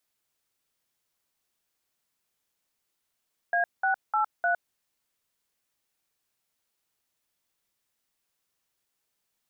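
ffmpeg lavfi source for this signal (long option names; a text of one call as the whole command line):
ffmpeg -f lavfi -i "aevalsrc='0.0596*clip(min(mod(t,0.303),0.11-mod(t,0.303))/0.002,0,1)*(eq(floor(t/0.303),0)*(sin(2*PI*697*mod(t,0.303))+sin(2*PI*1633*mod(t,0.303)))+eq(floor(t/0.303),1)*(sin(2*PI*770*mod(t,0.303))+sin(2*PI*1477*mod(t,0.303)))+eq(floor(t/0.303),2)*(sin(2*PI*852*mod(t,0.303))+sin(2*PI*1336*mod(t,0.303)))+eq(floor(t/0.303),3)*(sin(2*PI*697*mod(t,0.303))+sin(2*PI*1477*mod(t,0.303))))':duration=1.212:sample_rate=44100" out.wav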